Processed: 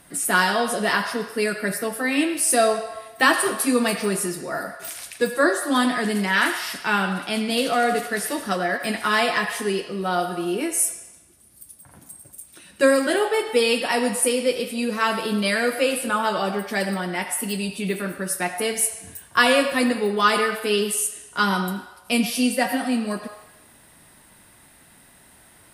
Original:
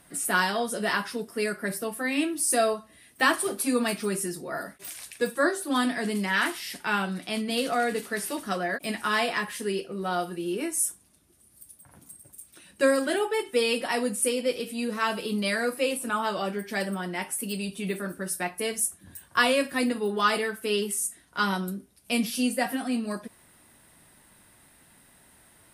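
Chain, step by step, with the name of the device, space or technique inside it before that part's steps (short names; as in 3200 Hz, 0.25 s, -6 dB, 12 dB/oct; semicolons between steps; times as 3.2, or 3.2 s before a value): filtered reverb send (on a send: HPF 550 Hz 24 dB/oct + LPF 7300 Hz 12 dB/oct + reverb RT60 1.1 s, pre-delay 70 ms, DRR 7.5 dB); on the sum: gain +5 dB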